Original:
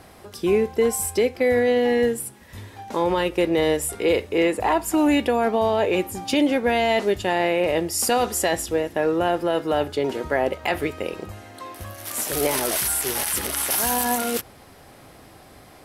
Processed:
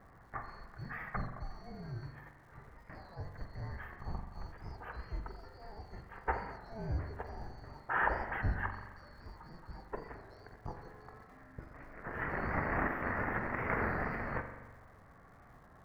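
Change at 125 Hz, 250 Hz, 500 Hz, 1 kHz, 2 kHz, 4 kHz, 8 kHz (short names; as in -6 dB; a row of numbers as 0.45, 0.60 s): -6.0 dB, -21.5 dB, -24.5 dB, -14.0 dB, -10.5 dB, -32.0 dB, under -40 dB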